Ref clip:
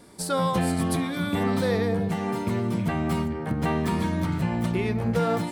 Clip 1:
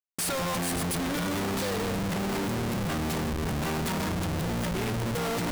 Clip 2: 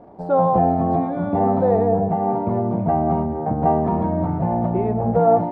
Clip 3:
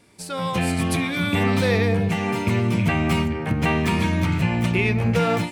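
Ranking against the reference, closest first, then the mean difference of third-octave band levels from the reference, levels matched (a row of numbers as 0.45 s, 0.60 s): 3, 1, 2; 2.5 dB, 8.0 dB, 11.0 dB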